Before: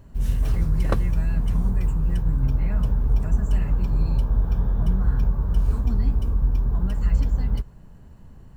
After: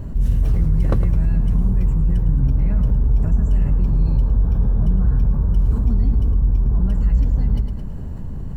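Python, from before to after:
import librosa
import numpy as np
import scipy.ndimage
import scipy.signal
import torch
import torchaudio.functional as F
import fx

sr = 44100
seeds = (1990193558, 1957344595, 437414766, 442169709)

p1 = fx.tilt_shelf(x, sr, db=5.5, hz=640.0)
p2 = p1 + fx.echo_feedback(p1, sr, ms=108, feedback_pct=41, wet_db=-12, dry=0)
p3 = fx.env_flatten(p2, sr, amount_pct=50)
y = F.gain(torch.from_numpy(p3), -3.0).numpy()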